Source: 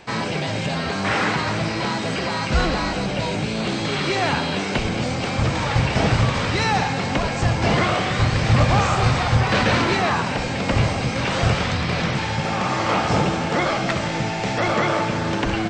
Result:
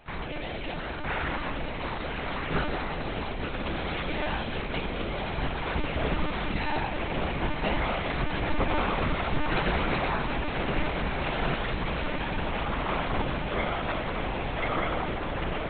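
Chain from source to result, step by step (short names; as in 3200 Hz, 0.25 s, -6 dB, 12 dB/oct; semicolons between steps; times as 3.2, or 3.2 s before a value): diffused feedback echo 1.161 s, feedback 54%, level -5 dB; monotone LPC vocoder at 8 kHz 300 Hz; bell 100 Hz -7.5 dB 0.45 oct; gain -9 dB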